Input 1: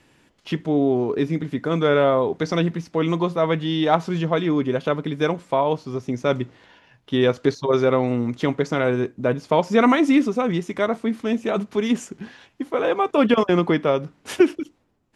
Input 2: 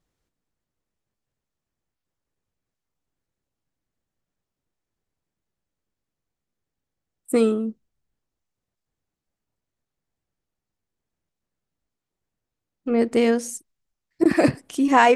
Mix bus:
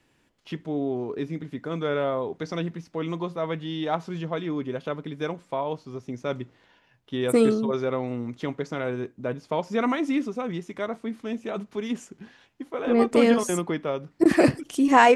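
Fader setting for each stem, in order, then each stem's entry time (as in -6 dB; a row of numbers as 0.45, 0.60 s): -8.5, -0.5 dB; 0.00, 0.00 s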